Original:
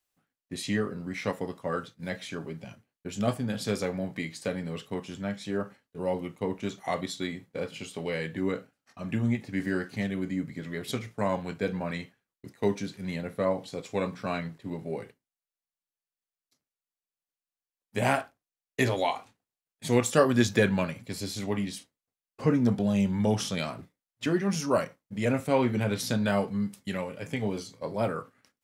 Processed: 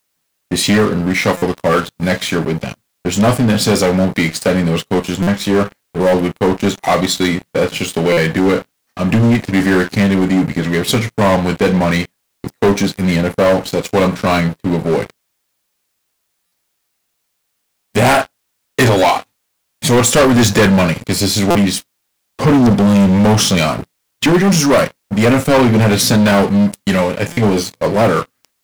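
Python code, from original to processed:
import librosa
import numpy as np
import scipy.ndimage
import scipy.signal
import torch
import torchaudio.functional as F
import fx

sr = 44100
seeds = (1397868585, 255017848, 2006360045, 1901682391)

y = fx.leveller(x, sr, passes=5)
y = fx.quant_dither(y, sr, seeds[0], bits=12, dither='triangular')
y = fx.buffer_glitch(y, sr, at_s=(1.37, 5.22, 8.12, 16.46, 21.5, 27.32), block=256, repeats=8)
y = y * 10.0 ** (3.0 / 20.0)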